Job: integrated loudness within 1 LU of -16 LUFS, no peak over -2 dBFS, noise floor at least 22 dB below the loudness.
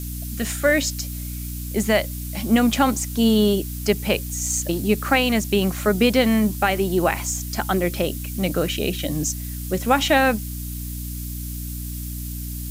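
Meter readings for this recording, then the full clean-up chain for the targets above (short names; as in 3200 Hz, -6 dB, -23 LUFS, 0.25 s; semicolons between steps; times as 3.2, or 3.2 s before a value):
hum 60 Hz; harmonics up to 300 Hz; hum level -29 dBFS; noise floor -30 dBFS; noise floor target -44 dBFS; loudness -22.0 LUFS; peak -6.0 dBFS; loudness target -16.0 LUFS
-> notches 60/120/180/240/300 Hz; denoiser 14 dB, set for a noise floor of -30 dBFS; gain +6 dB; limiter -2 dBFS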